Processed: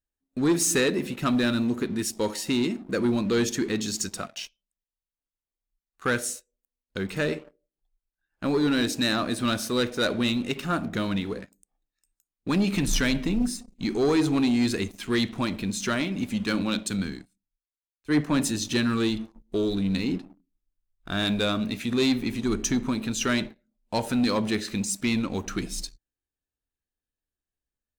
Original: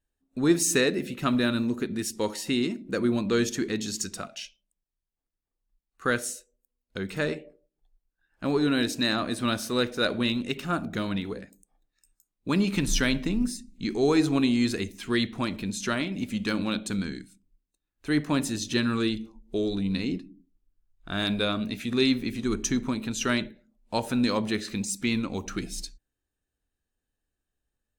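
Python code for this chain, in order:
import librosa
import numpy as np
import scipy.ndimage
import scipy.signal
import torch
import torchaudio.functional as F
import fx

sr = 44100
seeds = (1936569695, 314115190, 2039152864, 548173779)

y = fx.leveller(x, sr, passes=2)
y = fx.band_widen(y, sr, depth_pct=70, at=(16.45, 18.51))
y = y * librosa.db_to_amplitude(-5.0)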